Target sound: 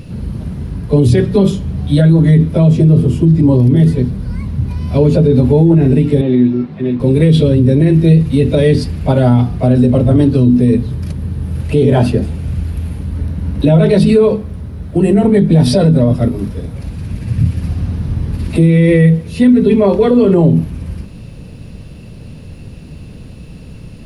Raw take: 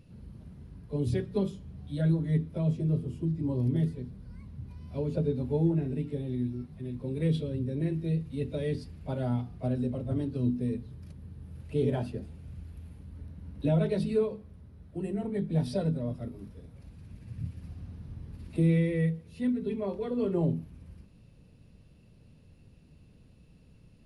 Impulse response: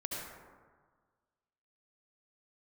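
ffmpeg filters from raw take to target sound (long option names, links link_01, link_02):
-filter_complex "[0:a]asettb=1/sr,asplit=3[link_01][link_02][link_03];[link_01]atrim=end=6.214[link_04];[link_02]atrim=start=6.21:end=7,asetpts=PTS-STARTPTS,afade=type=in:duration=0.004:curve=qsin,afade=type=out:start_time=0.786:duration=0.004:curve=qsin,highpass=210,lowpass=3300[link_05];[link_03]atrim=start=6.996[link_06];[link_04][link_05]acrossfade=duration=0.004:curve1=hsin:curve2=qsin[link_07];[link_07][link_06]acrossfade=duration=0.004:curve1=qsin:curve2=hsin,alimiter=level_in=26dB:limit=-1dB:release=50:level=0:latency=1,volume=-1dB"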